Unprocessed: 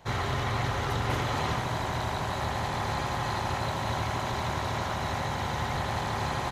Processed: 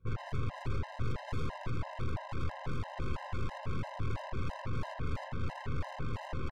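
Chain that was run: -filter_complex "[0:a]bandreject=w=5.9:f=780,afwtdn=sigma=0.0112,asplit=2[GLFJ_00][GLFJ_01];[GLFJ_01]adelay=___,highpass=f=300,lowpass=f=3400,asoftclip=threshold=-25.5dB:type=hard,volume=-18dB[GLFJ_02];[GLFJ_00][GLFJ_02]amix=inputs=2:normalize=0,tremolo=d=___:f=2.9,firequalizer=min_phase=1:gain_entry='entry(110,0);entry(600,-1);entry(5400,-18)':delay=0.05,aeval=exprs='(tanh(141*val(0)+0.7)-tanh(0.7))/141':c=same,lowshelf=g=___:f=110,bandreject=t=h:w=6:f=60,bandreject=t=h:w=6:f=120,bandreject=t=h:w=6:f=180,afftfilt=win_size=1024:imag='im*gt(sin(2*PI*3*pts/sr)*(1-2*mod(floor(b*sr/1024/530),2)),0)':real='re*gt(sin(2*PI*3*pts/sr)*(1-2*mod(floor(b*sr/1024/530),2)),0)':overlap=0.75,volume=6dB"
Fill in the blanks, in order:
180, 0.38, 11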